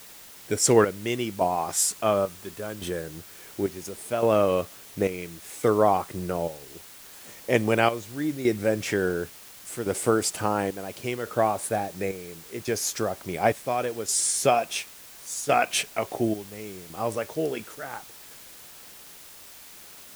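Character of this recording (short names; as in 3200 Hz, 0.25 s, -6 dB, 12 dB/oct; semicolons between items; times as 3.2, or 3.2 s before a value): chopped level 0.71 Hz, depth 65%, duty 60%; a quantiser's noise floor 8-bit, dither triangular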